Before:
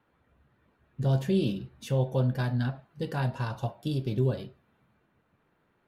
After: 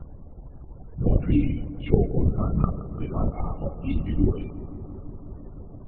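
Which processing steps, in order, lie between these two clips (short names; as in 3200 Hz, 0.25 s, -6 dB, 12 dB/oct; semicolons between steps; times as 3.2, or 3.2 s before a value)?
pitch shift by moving bins -4 st; added noise brown -46 dBFS; loudest bins only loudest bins 32; LPC vocoder at 8 kHz whisper; analogue delay 0.17 s, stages 2048, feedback 83%, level -16 dB; gain +5.5 dB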